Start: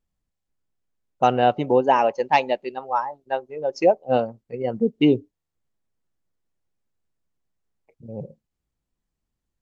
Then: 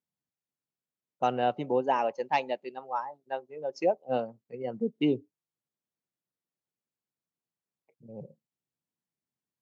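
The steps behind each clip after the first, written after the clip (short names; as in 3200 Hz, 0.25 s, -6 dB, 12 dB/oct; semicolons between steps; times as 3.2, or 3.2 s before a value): HPF 120 Hz 24 dB/oct; gain -9 dB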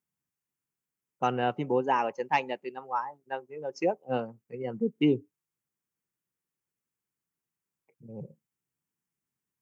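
fifteen-band EQ 250 Hz -3 dB, 630 Hz -10 dB, 4000 Hz -11 dB; gain +5 dB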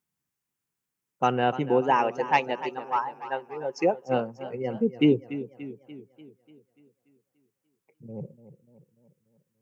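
warbling echo 0.292 s, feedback 54%, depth 87 cents, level -14 dB; gain +4 dB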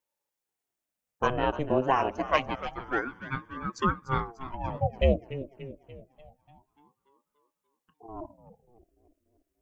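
ring modulator with a swept carrier 430 Hz, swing 70%, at 0.27 Hz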